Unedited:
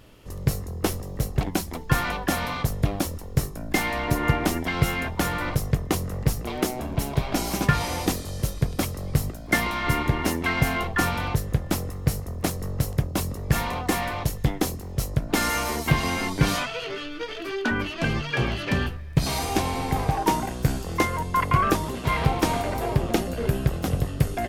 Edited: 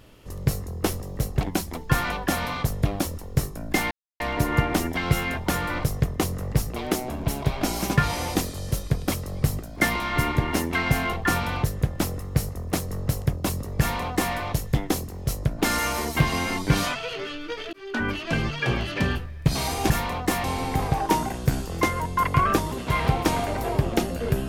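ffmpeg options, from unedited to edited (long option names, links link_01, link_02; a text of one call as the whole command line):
ffmpeg -i in.wav -filter_complex "[0:a]asplit=5[link_01][link_02][link_03][link_04][link_05];[link_01]atrim=end=3.91,asetpts=PTS-STARTPTS,afade=type=out:start_time=3.906:duration=0.004:curve=hsin,apad=pad_dur=0.29[link_06];[link_02]atrim=start=3.91:end=17.44,asetpts=PTS-STARTPTS,afade=type=in:duration=0.004:curve=hsin,afade=type=out:start_time=13.526:duration=0.004:curve=hsin[link_07];[link_03]atrim=start=17.44:end=19.612,asetpts=PTS-STARTPTS,afade=type=in:duration=0.33[link_08];[link_04]atrim=start=13.508:end=14.052[link_09];[link_05]atrim=start=19.608[link_10];[link_06][link_07][link_08]concat=n=3:v=0:a=1[link_11];[link_11][link_09]acrossfade=duration=0.004:curve1=hsin:curve2=hsin[link_12];[link_12][link_10]acrossfade=duration=0.004:curve1=hsin:curve2=hsin" out.wav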